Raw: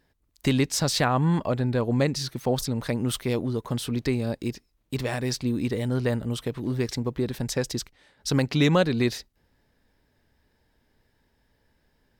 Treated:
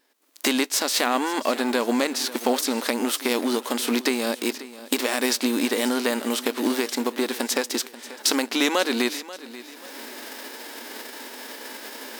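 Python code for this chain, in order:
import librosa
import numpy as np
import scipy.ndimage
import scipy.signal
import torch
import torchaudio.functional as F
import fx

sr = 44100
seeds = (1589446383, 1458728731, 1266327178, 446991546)

p1 = fx.envelope_flatten(x, sr, power=0.6)
p2 = fx.recorder_agc(p1, sr, target_db=-10.5, rise_db_per_s=32.0, max_gain_db=30)
p3 = fx.brickwall_highpass(p2, sr, low_hz=220.0)
y = p3 + fx.echo_feedback(p3, sr, ms=536, feedback_pct=38, wet_db=-16.5, dry=0)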